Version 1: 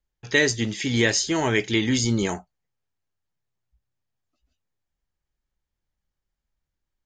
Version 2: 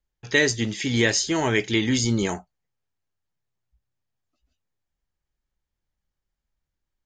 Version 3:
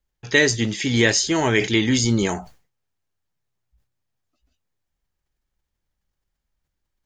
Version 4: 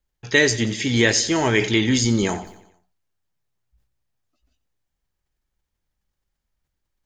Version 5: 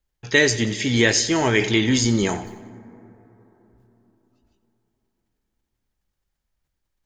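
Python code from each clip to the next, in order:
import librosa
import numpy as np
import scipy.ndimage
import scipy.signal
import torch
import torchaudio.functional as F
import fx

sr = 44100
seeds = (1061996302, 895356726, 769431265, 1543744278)

y1 = x
y2 = fx.sustainer(y1, sr, db_per_s=140.0)
y2 = F.gain(torch.from_numpy(y2), 3.0).numpy()
y3 = fx.echo_feedback(y2, sr, ms=90, feedback_pct=51, wet_db=-16)
y4 = fx.rev_plate(y3, sr, seeds[0], rt60_s=4.1, hf_ratio=0.3, predelay_ms=0, drr_db=18.0)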